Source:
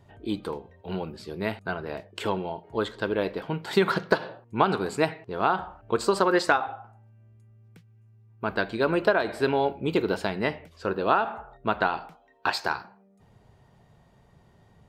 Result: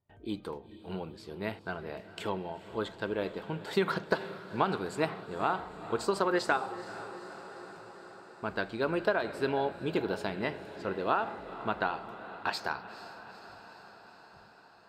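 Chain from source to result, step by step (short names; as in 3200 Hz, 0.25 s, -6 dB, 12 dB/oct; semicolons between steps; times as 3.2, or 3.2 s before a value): gate with hold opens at -46 dBFS; on a send: diffused feedback echo 0.467 s, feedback 69%, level -14 dB; on the sum: gain -6.5 dB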